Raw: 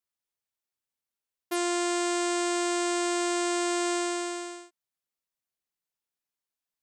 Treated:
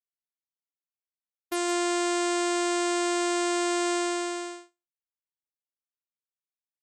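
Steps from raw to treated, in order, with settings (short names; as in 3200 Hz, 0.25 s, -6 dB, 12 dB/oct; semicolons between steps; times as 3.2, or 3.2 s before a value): echo 0.169 s -14.5 dB; expander -35 dBFS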